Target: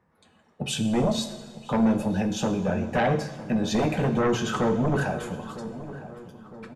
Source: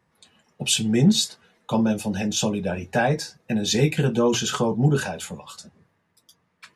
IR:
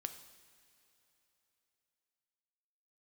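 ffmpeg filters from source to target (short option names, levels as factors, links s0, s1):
-filter_complex "[0:a]acrossover=split=1900[s0][s1];[s0]aeval=exprs='0.422*sin(PI/2*2.82*val(0)/0.422)':c=same[s2];[s2][s1]amix=inputs=2:normalize=0,asplit=2[s3][s4];[s4]adelay=957,lowpass=f=1500:p=1,volume=0.2,asplit=2[s5][s6];[s6]adelay=957,lowpass=f=1500:p=1,volume=0.51,asplit=2[s7][s8];[s8]adelay=957,lowpass=f=1500:p=1,volume=0.51,asplit=2[s9][s10];[s10]adelay=957,lowpass=f=1500:p=1,volume=0.51,asplit=2[s11][s12];[s12]adelay=957,lowpass=f=1500:p=1,volume=0.51[s13];[s3][s5][s7][s9][s11][s13]amix=inputs=6:normalize=0[s14];[1:a]atrim=start_sample=2205[s15];[s14][s15]afir=irnorm=-1:irlink=0,volume=0.376"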